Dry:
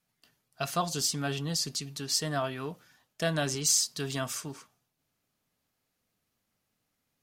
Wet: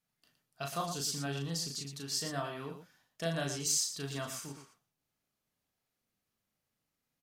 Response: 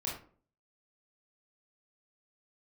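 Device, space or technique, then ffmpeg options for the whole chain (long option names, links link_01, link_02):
slapback doubling: -filter_complex "[0:a]asplit=3[link_01][link_02][link_03];[link_02]adelay=36,volume=-4dB[link_04];[link_03]adelay=116,volume=-8.5dB[link_05];[link_01][link_04][link_05]amix=inputs=3:normalize=0,volume=-7.5dB"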